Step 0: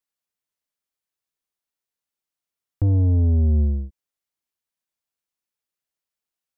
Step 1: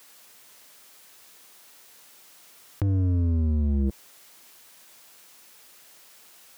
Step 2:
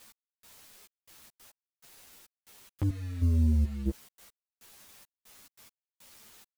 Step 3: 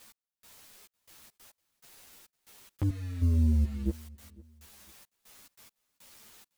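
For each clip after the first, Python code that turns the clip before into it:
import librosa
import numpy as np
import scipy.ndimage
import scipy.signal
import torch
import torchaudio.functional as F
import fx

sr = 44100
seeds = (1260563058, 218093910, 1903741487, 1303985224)

y1 = fx.highpass(x, sr, hz=250.0, slope=6)
y1 = fx.leveller(y1, sr, passes=2)
y1 = fx.env_flatten(y1, sr, amount_pct=100)
y2 = fx.step_gate(y1, sr, bpm=140, pattern='x...xxxx..xx.', floor_db=-12.0, edge_ms=4.5)
y2 = fx.quant_dither(y2, sr, seeds[0], bits=8, dither='none')
y2 = fx.ensemble(y2, sr)
y3 = fx.echo_feedback(y2, sr, ms=505, feedback_pct=31, wet_db=-23.5)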